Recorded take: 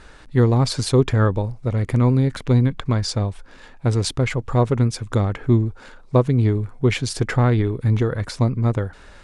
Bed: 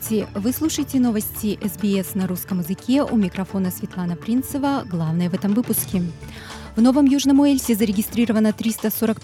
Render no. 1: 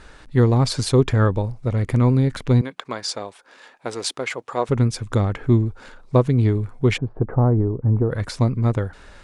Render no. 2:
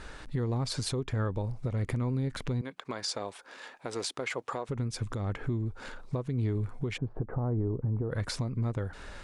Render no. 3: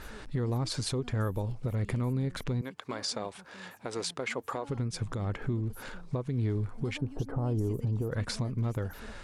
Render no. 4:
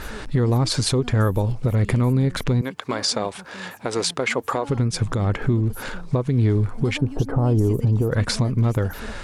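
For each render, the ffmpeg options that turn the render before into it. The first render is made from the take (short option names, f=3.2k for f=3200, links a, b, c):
-filter_complex "[0:a]asettb=1/sr,asplit=3[a][b][c];[a]atrim=end=2.614[d];[b]atrim=start=2.61:end=4.69,asetpts=PTS-STARTPTS,afade=t=in:d=0.004:c=qsin,afade=t=out:st=2.076:d=0.004:c=qsin,highpass=450[e];[c]atrim=start=4.686[f];[d][e]acrossfade=d=0.004:c1=hsin:c2=qsin[g];[g][f]acrossfade=d=0.004:c1=qsin:c2=hsin,asplit=3[h][i][j];[h]afade=t=out:st=6.96:d=0.02[k];[i]lowpass=f=1k:w=0.5412,lowpass=f=1k:w=1.3066,afade=t=in:st=6.96:d=0.02,afade=t=out:st=8.1:d=0.02[l];[j]afade=t=in:st=8.1:d=0.02[m];[k][l][m]amix=inputs=3:normalize=0"
-af "acompressor=threshold=-26dB:ratio=6,alimiter=limit=-23dB:level=0:latency=1:release=173"
-filter_complex "[1:a]volume=-30.5dB[a];[0:a][a]amix=inputs=2:normalize=0"
-af "volume=11.5dB"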